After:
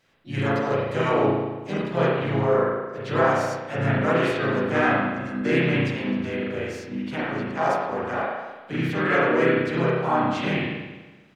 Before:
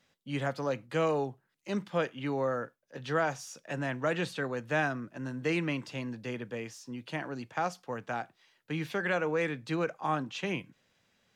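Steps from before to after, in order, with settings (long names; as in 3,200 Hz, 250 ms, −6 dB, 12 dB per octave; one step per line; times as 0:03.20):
spring reverb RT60 1.2 s, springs 36 ms, chirp 70 ms, DRR −7 dB
pitch-shifted copies added −4 semitones −2 dB, +4 semitones −10 dB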